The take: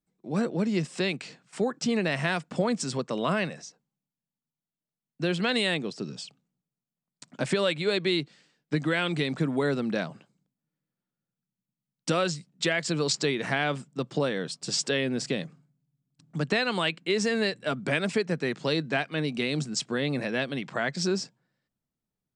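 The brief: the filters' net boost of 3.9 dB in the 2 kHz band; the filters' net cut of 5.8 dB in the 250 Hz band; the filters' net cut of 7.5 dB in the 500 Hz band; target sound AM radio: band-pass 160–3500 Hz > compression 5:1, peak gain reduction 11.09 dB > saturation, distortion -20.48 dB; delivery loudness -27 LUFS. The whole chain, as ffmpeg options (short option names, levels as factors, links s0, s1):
-af "highpass=160,lowpass=3500,equalizer=f=250:t=o:g=-4,equalizer=f=500:t=o:g=-8.5,equalizer=f=2000:t=o:g=6,acompressor=threshold=0.0282:ratio=5,asoftclip=threshold=0.0668,volume=2.99"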